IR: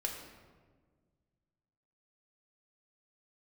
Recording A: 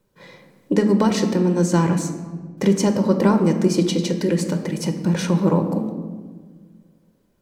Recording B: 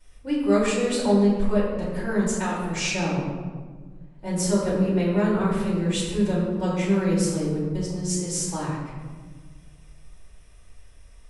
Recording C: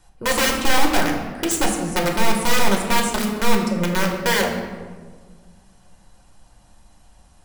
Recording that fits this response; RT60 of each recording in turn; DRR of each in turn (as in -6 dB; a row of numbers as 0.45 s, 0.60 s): C; 1.6 s, 1.5 s, 1.6 s; 5.5 dB, -9.0 dB, 0.0 dB